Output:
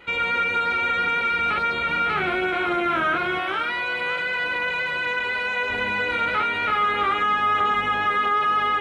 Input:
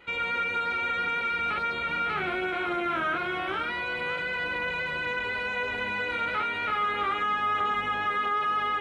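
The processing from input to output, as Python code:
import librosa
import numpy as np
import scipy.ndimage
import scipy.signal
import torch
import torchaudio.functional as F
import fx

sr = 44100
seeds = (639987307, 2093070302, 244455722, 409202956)

y = fx.low_shelf(x, sr, hz=330.0, db=-9.0, at=(3.39, 5.7))
y = y * 10.0 ** (6.0 / 20.0)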